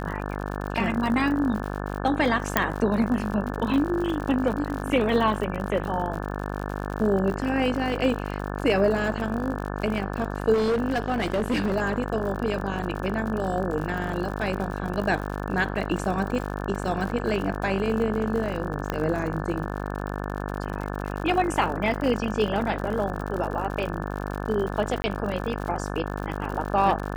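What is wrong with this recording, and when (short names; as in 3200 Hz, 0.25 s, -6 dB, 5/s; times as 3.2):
buzz 50 Hz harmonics 35 -31 dBFS
crackle 69/s -31 dBFS
2.57 pop -4 dBFS
10.53–11.77 clipped -20 dBFS
18.9 pop -13 dBFS
25.02–25.04 gap 20 ms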